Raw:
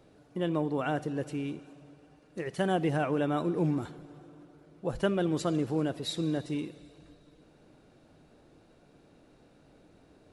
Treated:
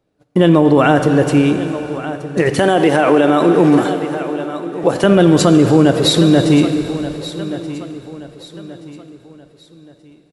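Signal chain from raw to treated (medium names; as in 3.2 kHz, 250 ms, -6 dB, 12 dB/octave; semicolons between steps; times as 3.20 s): 2.59–5.04 s: high-pass 270 Hz 12 dB/octave; gate -54 dBFS, range -31 dB; feedback delay 1178 ms, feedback 36%, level -16 dB; plate-style reverb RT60 3.8 s, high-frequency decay 0.9×, pre-delay 0 ms, DRR 9 dB; loudness maximiser +22.5 dB; trim -1 dB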